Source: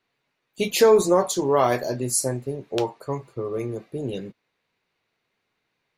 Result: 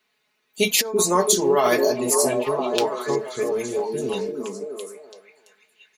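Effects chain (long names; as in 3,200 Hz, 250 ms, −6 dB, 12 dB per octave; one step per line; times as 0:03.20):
spectral tilt +2 dB per octave
comb filter 4.7 ms, depth 70%
compressor whose output falls as the input rises −18 dBFS, ratio −0.5
on a send: echo through a band-pass that steps 335 ms, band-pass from 300 Hz, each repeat 0.7 octaves, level 0 dB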